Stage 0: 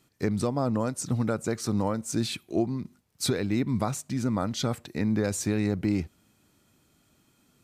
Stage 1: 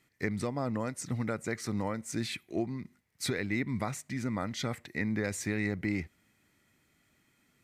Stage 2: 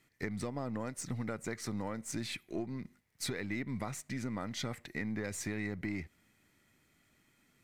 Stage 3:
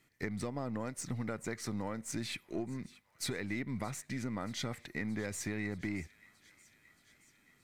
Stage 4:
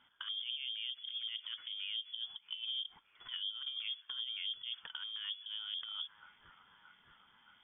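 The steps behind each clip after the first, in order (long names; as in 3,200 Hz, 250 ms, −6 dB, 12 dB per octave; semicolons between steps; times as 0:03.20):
parametric band 2,000 Hz +15 dB 0.47 octaves; level −6.5 dB
gain on one half-wave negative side −3 dB; downward compressor 2.5 to 1, threshold −37 dBFS, peak gain reduction 6 dB; level +1 dB
delay with a high-pass on its return 625 ms, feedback 69%, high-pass 1,500 Hz, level −20 dB
compressor whose output falls as the input rises −40 dBFS, ratio −0.5; treble cut that deepens with the level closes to 520 Hz, closed at −36 dBFS; voice inversion scrambler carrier 3,400 Hz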